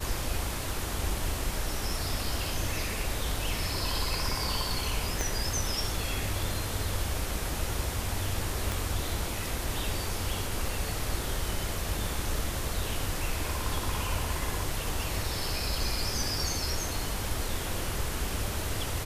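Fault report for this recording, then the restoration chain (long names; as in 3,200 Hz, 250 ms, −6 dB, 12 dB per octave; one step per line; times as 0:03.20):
0:05.21: click
0:08.72: click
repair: click removal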